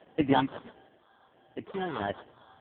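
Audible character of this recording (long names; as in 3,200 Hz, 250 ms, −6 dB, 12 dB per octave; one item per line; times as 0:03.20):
phaser sweep stages 6, 1.5 Hz, lowest notch 550–1,200 Hz
sample-and-hold tremolo 3.5 Hz, depth 55%
aliases and images of a low sample rate 2,400 Hz, jitter 0%
AMR narrowband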